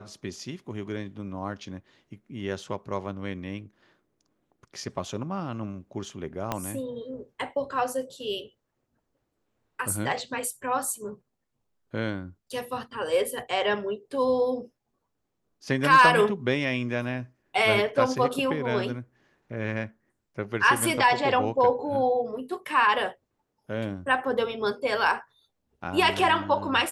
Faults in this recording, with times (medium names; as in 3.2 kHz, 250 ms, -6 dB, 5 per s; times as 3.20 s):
6.52 s: pop -13 dBFS